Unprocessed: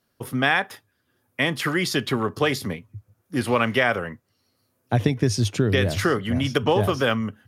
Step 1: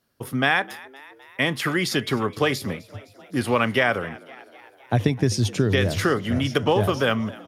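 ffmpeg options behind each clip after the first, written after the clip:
ffmpeg -i in.wav -filter_complex "[0:a]asplit=6[link_01][link_02][link_03][link_04][link_05][link_06];[link_02]adelay=257,afreqshift=68,volume=-21dB[link_07];[link_03]adelay=514,afreqshift=136,volume=-25dB[link_08];[link_04]adelay=771,afreqshift=204,volume=-29dB[link_09];[link_05]adelay=1028,afreqshift=272,volume=-33dB[link_10];[link_06]adelay=1285,afreqshift=340,volume=-37.1dB[link_11];[link_01][link_07][link_08][link_09][link_10][link_11]amix=inputs=6:normalize=0" out.wav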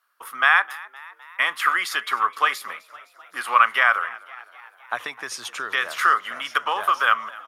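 ffmpeg -i in.wav -af "highpass=frequency=1200:width_type=q:width=4,equalizer=frequency=5100:width=1.4:gain=-5.5" out.wav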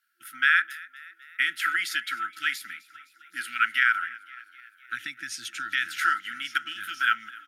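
ffmpeg -i in.wav -af "afftfilt=real='re*(1-between(b*sr/4096,350,1300))':imag='im*(1-between(b*sr/4096,350,1300))':win_size=4096:overlap=0.75,volume=-3dB" out.wav

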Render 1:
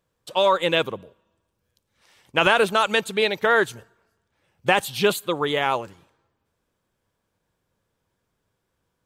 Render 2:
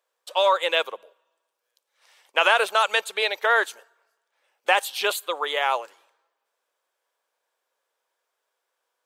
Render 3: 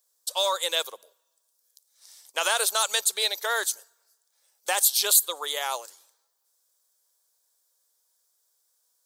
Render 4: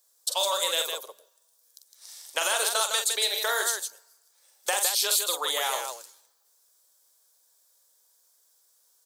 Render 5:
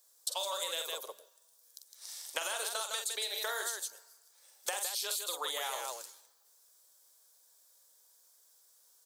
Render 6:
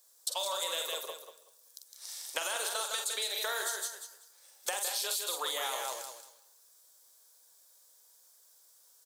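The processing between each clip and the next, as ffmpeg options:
ffmpeg -i in.wav -af "highpass=frequency=520:width=0.5412,highpass=frequency=520:width=1.3066" out.wav
ffmpeg -i in.wav -af "aexciter=amount=10.5:drive=4.4:freq=4000,volume=-7.5dB" out.wav
ffmpeg -i in.wav -filter_complex "[0:a]acrossover=split=330|6600[link_01][link_02][link_03];[link_01]acompressor=threshold=-55dB:ratio=4[link_04];[link_02]acompressor=threshold=-31dB:ratio=4[link_05];[link_03]acompressor=threshold=-35dB:ratio=4[link_06];[link_04][link_05][link_06]amix=inputs=3:normalize=0,asplit=2[link_07][link_08];[link_08]aecho=0:1:45|159:0.501|0.501[link_09];[link_07][link_09]amix=inputs=2:normalize=0,volume=4.5dB" out.wav
ffmpeg -i in.wav -af "acompressor=threshold=-33dB:ratio=8" out.wav
ffmpeg -i in.wav -filter_complex "[0:a]asplit=2[link_01][link_02];[link_02]asoftclip=type=tanh:threshold=-34.5dB,volume=-10.5dB[link_03];[link_01][link_03]amix=inputs=2:normalize=0,aecho=1:1:190|380|570:0.355|0.0674|0.0128" out.wav

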